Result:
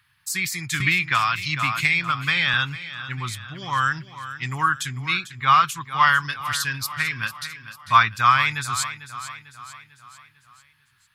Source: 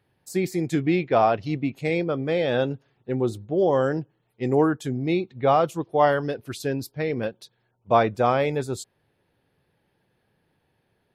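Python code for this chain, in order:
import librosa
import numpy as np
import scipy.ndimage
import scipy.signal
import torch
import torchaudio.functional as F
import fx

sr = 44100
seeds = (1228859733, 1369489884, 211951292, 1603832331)

y = fx.curve_eq(x, sr, hz=(130.0, 480.0, 710.0, 1100.0), db=(0, -29, -17, 12))
y = fx.echo_feedback(y, sr, ms=447, feedback_pct=49, wet_db=-13)
y = fx.band_squash(y, sr, depth_pct=100, at=(0.8, 2.54))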